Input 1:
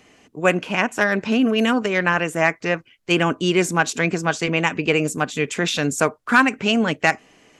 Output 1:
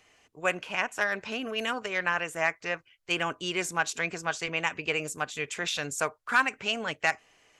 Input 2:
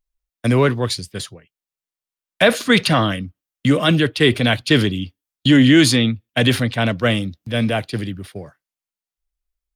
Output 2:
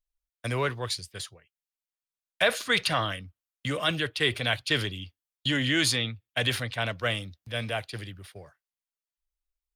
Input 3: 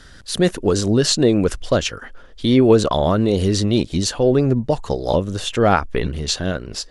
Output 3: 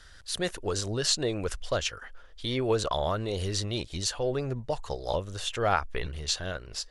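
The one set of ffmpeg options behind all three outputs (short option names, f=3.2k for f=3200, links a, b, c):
-af "equalizer=f=230:w=0.8:g=-13.5,volume=-7dB"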